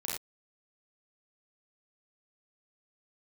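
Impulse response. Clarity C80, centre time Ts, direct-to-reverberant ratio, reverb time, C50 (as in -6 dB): 4.5 dB, 51 ms, -5.0 dB, not exponential, 1.5 dB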